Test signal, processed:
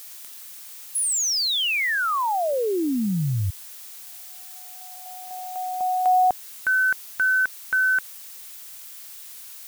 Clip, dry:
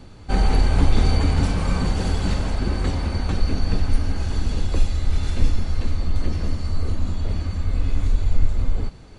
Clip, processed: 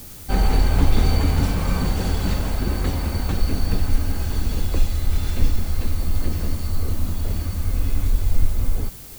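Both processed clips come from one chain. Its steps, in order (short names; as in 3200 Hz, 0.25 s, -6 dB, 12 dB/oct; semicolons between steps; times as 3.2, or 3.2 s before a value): added noise blue -41 dBFS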